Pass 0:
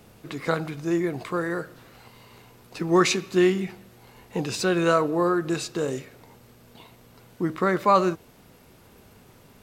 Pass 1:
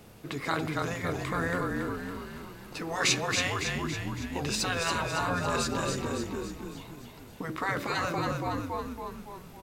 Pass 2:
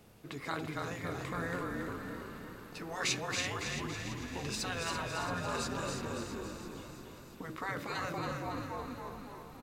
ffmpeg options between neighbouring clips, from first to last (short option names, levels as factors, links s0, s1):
-filter_complex "[0:a]asplit=8[s0][s1][s2][s3][s4][s5][s6][s7];[s1]adelay=279,afreqshift=-37,volume=0.562[s8];[s2]adelay=558,afreqshift=-74,volume=0.299[s9];[s3]adelay=837,afreqshift=-111,volume=0.158[s10];[s4]adelay=1116,afreqshift=-148,volume=0.0841[s11];[s5]adelay=1395,afreqshift=-185,volume=0.0442[s12];[s6]adelay=1674,afreqshift=-222,volume=0.0234[s13];[s7]adelay=1953,afreqshift=-259,volume=0.0124[s14];[s0][s8][s9][s10][s11][s12][s13][s14]amix=inputs=8:normalize=0,afftfilt=real='re*lt(hypot(re,im),0.282)':imag='im*lt(hypot(re,im),0.282)':win_size=1024:overlap=0.75"
-af "aecho=1:1:336|672|1008|1344|1680|2016|2352:0.355|0.213|0.128|0.0766|0.046|0.0276|0.0166,volume=0.422"